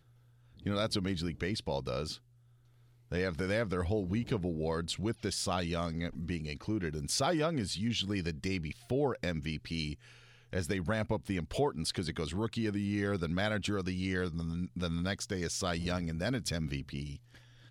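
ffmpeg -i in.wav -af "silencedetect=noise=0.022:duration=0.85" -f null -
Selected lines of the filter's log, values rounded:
silence_start: 2.13
silence_end: 3.12 | silence_duration: 0.99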